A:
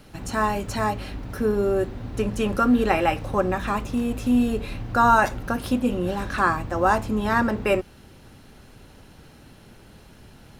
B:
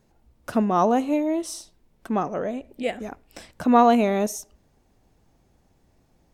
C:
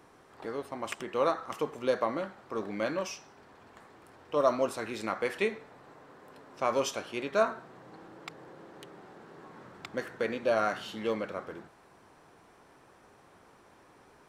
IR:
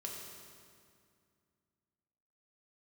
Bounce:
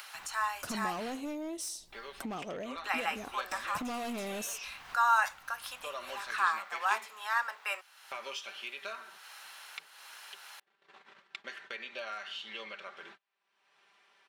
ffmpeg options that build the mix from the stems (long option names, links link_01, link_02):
-filter_complex "[0:a]highpass=frequency=970:width=0.5412,highpass=frequency=970:width=1.3066,volume=-6dB,asplit=3[link_01][link_02][link_03];[link_01]atrim=end=1.21,asetpts=PTS-STARTPTS,afade=type=out:start_time=1.206:duration=0.004:curve=hsin[link_04];[link_02]atrim=start=1.21:end=2.84,asetpts=PTS-STARTPTS,volume=0[link_05];[link_03]atrim=start=2.84,asetpts=PTS-STARTPTS,afade=type=in:duration=0.004:curve=hsin[link_06];[link_04][link_05][link_06]concat=n=3:v=0:a=1[link_07];[1:a]highshelf=frequency=2900:gain=12,adelay=150,volume=-8dB[link_08];[2:a]agate=range=-36dB:threshold=-46dB:ratio=16:detection=peak,bandpass=frequency=3000:width_type=q:width=1.7:csg=0,aecho=1:1:5.1:0.61,adelay=1500,volume=0.5dB[link_09];[link_08][link_09]amix=inputs=2:normalize=0,volume=28.5dB,asoftclip=hard,volume=-28.5dB,acompressor=threshold=-37dB:ratio=6,volume=0dB[link_10];[link_07][link_10]amix=inputs=2:normalize=0,acompressor=mode=upward:threshold=-37dB:ratio=2.5"